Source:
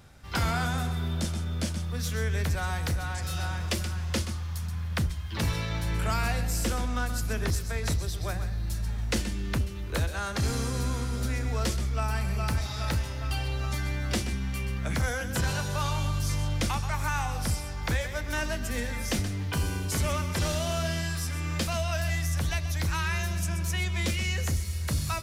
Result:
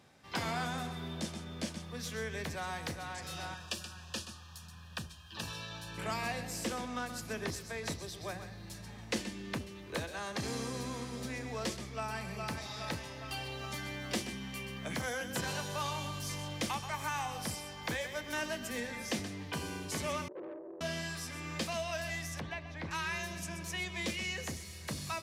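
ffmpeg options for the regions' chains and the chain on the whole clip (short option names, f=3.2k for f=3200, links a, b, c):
-filter_complex "[0:a]asettb=1/sr,asplit=3[a][b][c];[a]atrim=end=3.544[d];[b]atrim=start=3.54:end=5.98,asetpts=PTS-STARTPTS,afade=t=in:d=0.004:c=qsin,afade=t=out:st=2.436:d=0.004:c=qsin,asuperstop=centerf=2100:order=8:qfactor=4.1,equalizer=f=350:t=o:w=2.7:g=-9.5[e];[c]atrim=start=5.976[f];[d][e]acrossfade=d=0.004:c1=hsin:c2=qsin[g];[g][f]acrossfade=d=0.004:c1=qsin:c2=hsin,asettb=1/sr,asplit=3[h][i][j];[h]atrim=end=13.284[k];[i]atrim=start=13.28:end=18.78,asetpts=PTS-STARTPTS,afade=t=in:d=0.004:c=qsin,afade=t=out:st=5.496:d=0.004:c=qsin,highshelf=f=12k:g=9.5,aeval=exprs='val(0)+0.00398*sin(2*PI*3100*n/s)':c=same[l];[j]atrim=start=18.776[m];[k][l]acrossfade=d=0.004:c1=hsin:c2=qsin[n];[n][m]acrossfade=d=0.004:c1=qsin:c2=hsin,asettb=1/sr,asplit=3[o][p][q];[o]atrim=end=20.284[r];[p]atrim=start=20.28:end=20.81,asetpts=PTS-STARTPTS,afade=t=in:d=0.004:c=qsin,afade=t=out:st=0.526:d=0.004:c=qsin,asuperpass=centerf=410:order=20:qfactor=1.4,acontrast=49,aeval=exprs='(tanh(63.1*val(0)+0.4)-tanh(0.4))/63.1':c=same[s];[q]atrim=start=20.806[t];[r][s]acrossfade=d=0.004:c1=hsin:c2=qsin[u];[u][t]acrossfade=d=0.004:c1=qsin:c2=hsin,asettb=1/sr,asplit=3[v][w][x];[v]atrim=end=22.404[y];[w]atrim=start=22.4:end=22.91,asetpts=PTS-STARTPTS,afade=t=in:d=0.004:c=qsin,afade=t=out:st=0.506:d=0.004:c=qsin,lowpass=2.4k,aeval=exprs='sgn(val(0))*max(abs(val(0))-0.00266,0)':c=same[z];[x]atrim=start=22.906[aa];[y][z]acrossfade=d=0.004:c1=hsin:c2=qsin[ab];[ab][aa]acrossfade=d=0.004:c1=qsin:c2=hsin,highpass=190,highshelf=f=10k:g=-10,bandreject=f=1.4k:w=8.3,volume=-4dB"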